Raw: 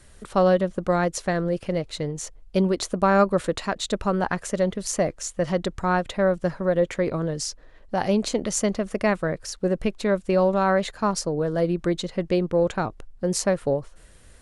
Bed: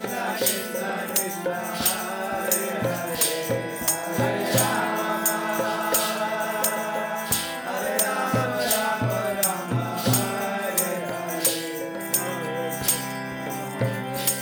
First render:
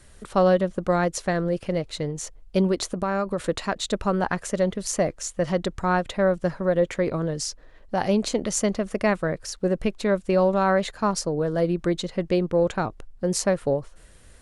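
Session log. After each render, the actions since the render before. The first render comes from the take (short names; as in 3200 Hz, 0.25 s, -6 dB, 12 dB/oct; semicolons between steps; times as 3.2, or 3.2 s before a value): 2.76–3.42 compressor 5:1, threshold -21 dBFS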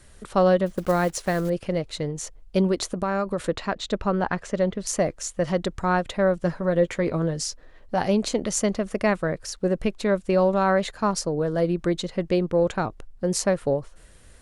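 0.66–1.51 block floating point 5-bit; 3.48–4.87 air absorption 95 m; 6.4–8.05 doubler 12 ms -9.5 dB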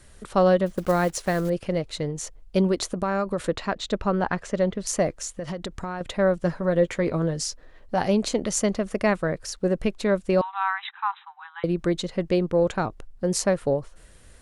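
5.2–6.01 compressor 12:1, threshold -27 dBFS; 10.41–11.64 brick-wall FIR band-pass 770–4000 Hz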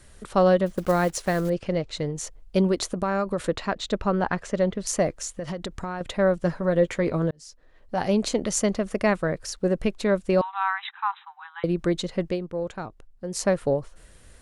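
1.53–1.97 LPF 7600 Hz 24 dB/oct; 7.31–8.2 fade in; 12.25–13.46 dip -8.5 dB, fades 0.13 s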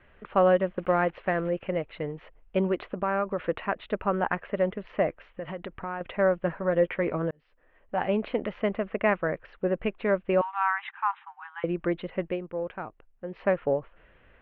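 steep low-pass 2900 Hz 48 dB/oct; low shelf 260 Hz -10 dB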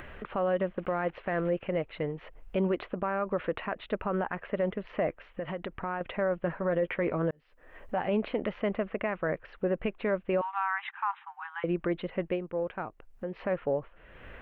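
upward compressor, threshold -34 dBFS; limiter -20 dBFS, peak gain reduction 10 dB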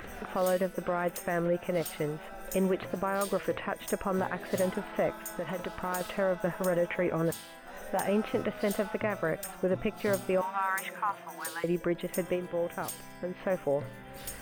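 add bed -18 dB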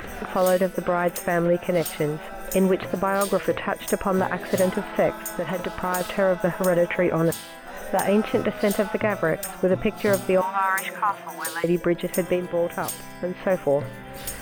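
gain +8 dB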